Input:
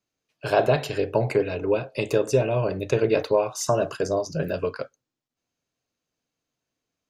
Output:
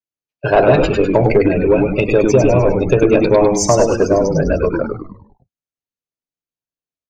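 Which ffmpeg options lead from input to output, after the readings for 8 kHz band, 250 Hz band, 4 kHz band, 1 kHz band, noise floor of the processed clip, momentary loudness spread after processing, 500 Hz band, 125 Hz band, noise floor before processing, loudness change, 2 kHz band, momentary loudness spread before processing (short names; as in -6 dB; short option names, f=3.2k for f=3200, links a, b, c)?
+11.0 dB, +14.5 dB, +6.0 dB, +9.5 dB, under -85 dBFS, 6 LU, +10.0 dB, +10.5 dB, -85 dBFS, +10.5 dB, +9.0 dB, 7 LU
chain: -filter_complex "[0:a]afftdn=nr=31:nf=-32,asplit=2[a][b];[b]acompressor=threshold=-28dB:ratio=6,volume=-0.5dB[c];[a][c]amix=inputs=2:normalize=0,asplit=7[d][e][f][g][h][i][j];[e]adelay=101,afreqshift=-110,volume=-4dB[k];[f]adelay=202,afreqshift=-220,volume=-10.6dB[l];[g]adelay=303,afreqshift=-330,volume=-17.1dB[m];[h]adelay=404,afreqshift=-440,volume=-23.7dB[n];[i]adelay=505,afreqshift=-550,volume=-30.2dB[o];[j]adelay=606,afreqshift=-660,volume=-36.8dB[p];[d][k][l][m][n][o][p]amix=inputs=7:normalize=0,acontrast=65,volume=1dB"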